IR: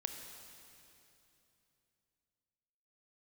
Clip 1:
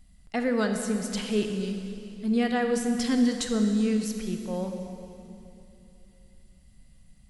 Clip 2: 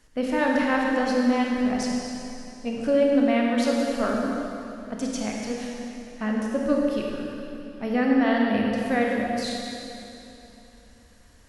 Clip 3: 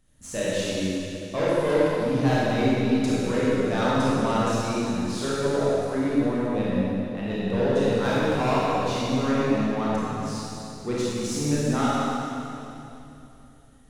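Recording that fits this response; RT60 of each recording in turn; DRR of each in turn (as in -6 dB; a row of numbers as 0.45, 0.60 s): 1; 3.0, 3.0, 3.0 s; 4.5, -2.0, -8.5 dB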